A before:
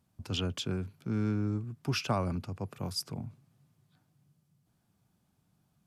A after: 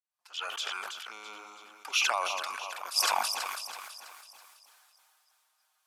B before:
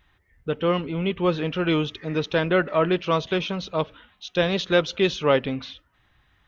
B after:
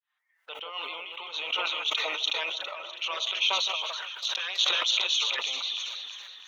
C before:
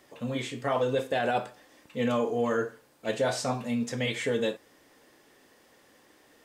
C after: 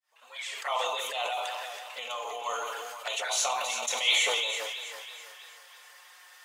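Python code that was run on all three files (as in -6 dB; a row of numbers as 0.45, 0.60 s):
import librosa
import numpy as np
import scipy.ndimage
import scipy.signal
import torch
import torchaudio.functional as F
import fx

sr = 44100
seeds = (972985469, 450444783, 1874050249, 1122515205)

y = fx.fade_in_head(x, sr, length_s=1.16)
y = fx.over_compress(y, sr, threshold_db=-29.0, ratio=-0.5)
y = fx.env_flanger(y, sr, rest_ms=6.7, full_db=-29.5)
y = scipy.signal.sosfilt(scipy.signal.butter(4, 910.0, 'highpass', fs=sr, output='sos'), y)
y = fx.echo_alternate(y, sr, ms=164, hz=1400.0, feedback_pct=71, wet_db=-7)
y = fx.sustainer(y, sr, db_per_s=23.0)
y = y * 10.0 ** (-12 / 20.0) / np.max(np.abs(y))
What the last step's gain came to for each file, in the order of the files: +10.0, +2.0, +9.5 dB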